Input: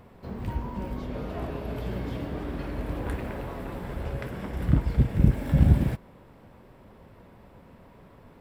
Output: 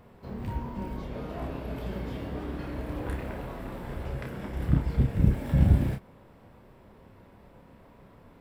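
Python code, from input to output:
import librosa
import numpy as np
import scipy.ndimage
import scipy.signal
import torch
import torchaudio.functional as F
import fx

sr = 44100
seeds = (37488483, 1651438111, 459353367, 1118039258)

y = fx.doubler(x, sr, ms=30.0, db=-5.5)
y = F.gain(torch.from_numpy(y), -3.0).numpy()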